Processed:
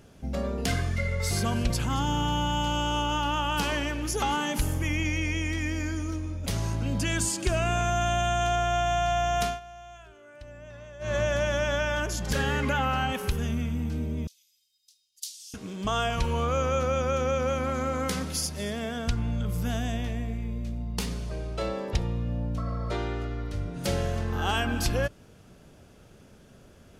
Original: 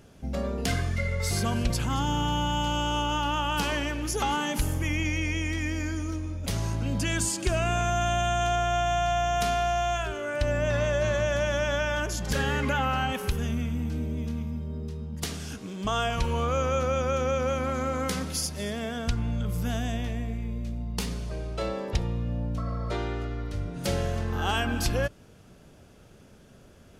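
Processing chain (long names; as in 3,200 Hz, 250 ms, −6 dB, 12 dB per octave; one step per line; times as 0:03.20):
0:09.43–0:11.16: duck −19 dB, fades 0.17 s
0:14.27–0:15.54: inverse Chebyshev high-pass filter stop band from 940 Hz, stop band 70 dB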